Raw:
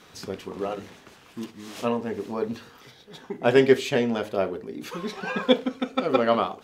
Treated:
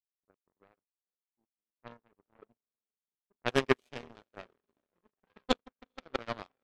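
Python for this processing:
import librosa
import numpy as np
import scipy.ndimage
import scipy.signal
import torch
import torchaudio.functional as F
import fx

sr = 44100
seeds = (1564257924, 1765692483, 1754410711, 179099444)

y = fx.env_lowpass(x, sr, base_hz=470.0, full_db=-17.0)
y = fx.echo_diffused(y, sr, ms=457, feedback_pct=50, wet_db=-13.5)
y = fx.power_curve(y, sr, exponent=3.0)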